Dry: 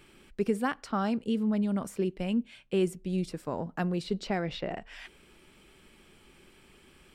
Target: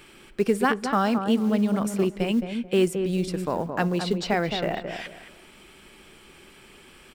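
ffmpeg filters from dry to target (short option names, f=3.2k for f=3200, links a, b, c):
-filter_complex "[0:a]lowshelf=f=320:g=-6.5,asplit=2[a][b];[b]acrusher=bits=5:mode=log:mix=0:aa=0.000001,volume=-5dB[c];[a][c]amix=inputs=2:normalize=0,asplit=2[d][e];[e]adelay=218,lowpass=f=1.3k:p=1,volume=-6dB,asplit=2[f][g];[g]adelay=218,lowpass=f=1.3k:p=1,volume=0.28,asplit=2[h][i];[i]adelay=218,lowpass=f=1.3k:p=1,volume=0.28,asplit=2[j][k];[k]adelay=218,lowpass=f=1.3k:p=1,volume=0.28[l];[d][f][h][j][l]amix=inputs=5:normalize=0,volume=5dB"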